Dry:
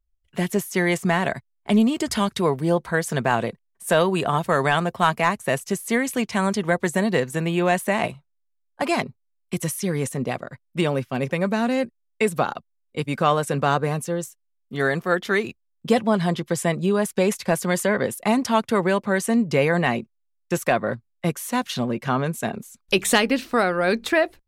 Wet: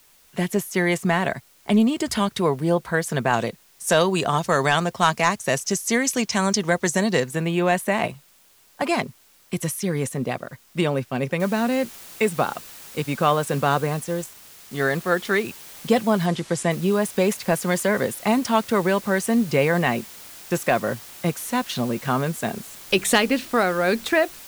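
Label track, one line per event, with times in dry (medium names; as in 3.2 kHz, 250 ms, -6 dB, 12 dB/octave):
3.330000	7.240000	peaking EQ 5.9 kHz +13.5 dB 0.86 oct
11.400000	11.400000	noise floor step -56 dB -42 dB
13.840000	14.910000	companding laws mixed up coded by A
16.260000	16.710000	low-pass 9.9 kHz 24 dB/octave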